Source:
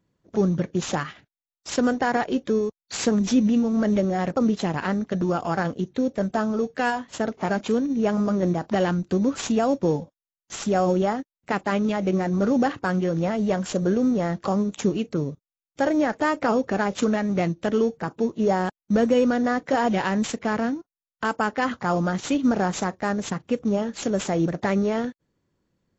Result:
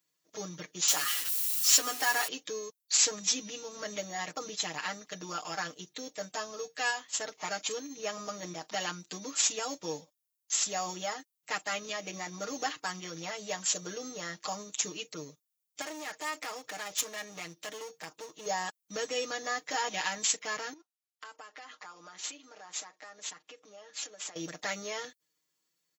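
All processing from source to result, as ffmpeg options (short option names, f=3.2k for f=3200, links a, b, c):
-filter_complex "[0:a]asettb=1/sr,asplit=3[a][b][c];[a]atrim=end=0.884[d];[b]atrim=start=0.88:end=2.28,asetpts=PTS-STARTPTS,afade=t=in:d=0.004:c=qsin,afade=t=out:st=1.396:d=0.004:c=qsin,aeval=exprs='val(0)+0.5*0.0282*sgn(val(0))':c=same,highpass=270,aecho=1:1:7.2:0.58,atrim=end_sample=61740[e];[c]atrim=start=2.276[f];[d][e]acrossfade=d=0.004:c1=hsin:c2=qsin[g];[g][f]acrossfade=d=0.004:c1=qsin:c2=hsin,asettb=1/sr,asplit=3[h][i][j];[h]atrim=end=15.814[k];[i]atrim=start=15.81:end=18.46,asetpts=PTS-STARTPTS,afade=t=in:d=0.004:c=qsin,afade=t=out:st=2.646:d=0.004:c=qsin,highpass=f=45:w=0.5412,highpass=f=45:w=1.3066,acompressor=threshold=-22dB:ratio=6:attack=3.2:release=140:knee=1:detection=peak,aeval=exprs='clip(val(0),-1,0.0251)':c=same[l];[j]atrim=start=18.456[m];[k][l]acrossfade=d=0.004:c1=hsin:c2=qsin[n];[n][m]acrossfade=d=0.004:c1=qsin:c2=hsin,asettb=1/sr,asplit=3[o][p][q];[o]atrim=end=20.734[r];[p]atrim=start=20.73:end=24.36,asetpts=PTS-STARTPTS,afade=t=in:d=0.004:c=qsin,afade=t=out:st=3.626:d=0.004:c=qsin,highpass=300,aemphasis=mode=reproduction:type=50kf,acompressor=threshold=-35dB:ratio=5:attack=3.2:release=140:knee=1:detection=peak[s];[q]atrim=start=24.356[t];[r][s]acrossfade=d=0.004:c1=hsin:c2=qsin[u];[u][t]acrossfade=d=0.004:c1=qsin:c2=hsin,aderivative,bandreject=f=1.5k:w=13,aecho=1:1:6.5:0.93,volume=5.5dB"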